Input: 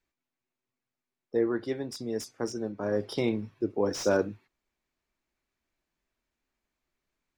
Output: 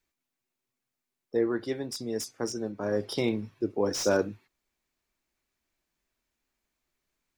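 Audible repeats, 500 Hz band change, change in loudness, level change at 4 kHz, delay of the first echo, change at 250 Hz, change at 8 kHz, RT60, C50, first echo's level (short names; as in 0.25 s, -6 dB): none, 0.0 dB, +0.5 dB, +3.5 dB, none, 0.0 dB, +4.5 dB, none, none, none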